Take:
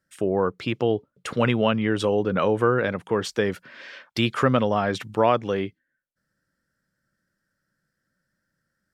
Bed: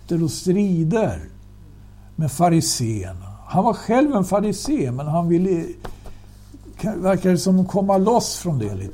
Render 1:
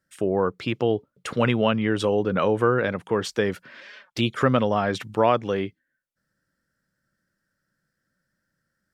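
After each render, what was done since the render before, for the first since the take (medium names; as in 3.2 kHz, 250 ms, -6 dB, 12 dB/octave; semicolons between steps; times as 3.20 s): 3.80–4.41 s: touch-sensitive flanger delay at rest 7 ms, full sweep at -20 dBFS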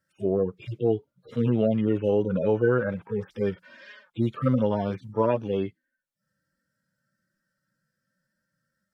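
harmonic-percussive separation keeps harmonic; band-stop 730 Hz, Q 14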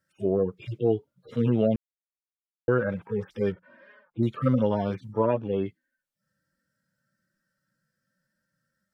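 1.76–2.68 s: mute; 3.52–4.23 s: low-pass 1.2 kHz; 5.18–5.66 s: distance through air 260 m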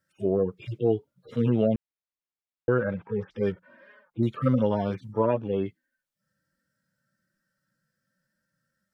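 1.64–3.43 s: distance through air 120 m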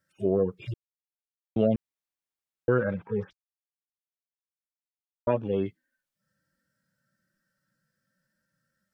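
0.74–1.56 s: mute; 3.33–5.27 s: mute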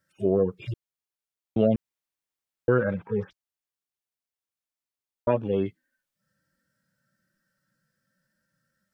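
trim +2 dB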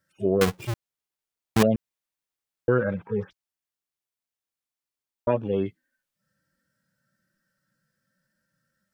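0.41–1.63 s: square wave that keeps the level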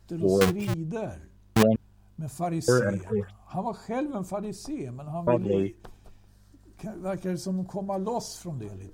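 add bed -13.5 dB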